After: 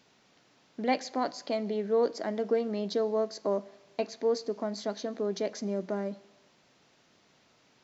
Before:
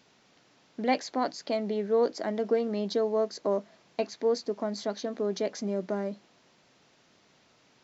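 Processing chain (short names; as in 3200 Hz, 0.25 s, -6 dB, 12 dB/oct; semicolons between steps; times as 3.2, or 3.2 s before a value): Schroeder reverb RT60 1 s, combs from 33 ms, DRR 19.5 dB; gain -1.5 dB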